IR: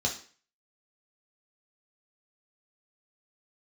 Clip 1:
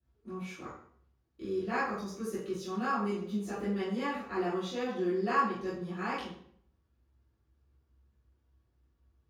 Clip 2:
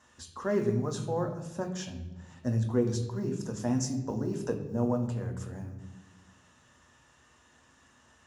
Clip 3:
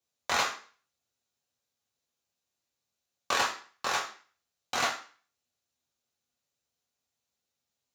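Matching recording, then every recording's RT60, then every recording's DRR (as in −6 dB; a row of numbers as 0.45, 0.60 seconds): 3; 0.60, 1.2, 0.40 seconds; −12.5, 4.0, −1.0 decibels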